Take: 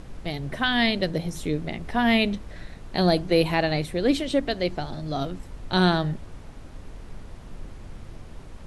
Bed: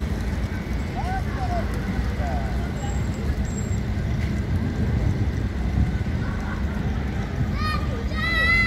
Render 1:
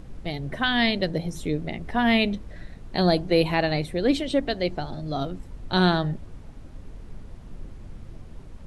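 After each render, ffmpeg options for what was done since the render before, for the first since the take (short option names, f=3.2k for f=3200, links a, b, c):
-af "afftdn=nr=6:nf=-43"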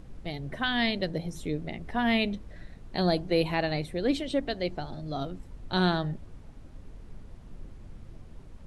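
-af "volume=-5dB"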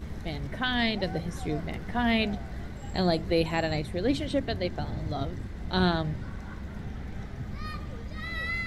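-filter_complex "[1:a]volume=-13dB[a];[0:a][a]amix=inputs=2:normalize=0"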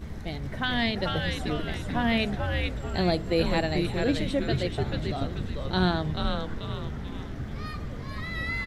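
-filter_complex "[0:a]asplit=7[a][b][c][d][e][f][g];[b]adelay=437,afreqshift=-150,volume=-3.5dB[h];[c]adelay=874,afreqshift=-300,volume=-10.6dB[i];[d]adelay=1311,afreqshift=-450,volume=-17.8dB[j];[e]adelay=1748,afreqshift=-600,volume=-24.9dB[k];[f]adelay=2185,afreqshift=-750,volume=-32dB[l];[g]adelay=2622,afreqshift=-900,volume=-39.2dB[m];[a][h][i][j][k][l][m]amix=inputs=7:normalize=0"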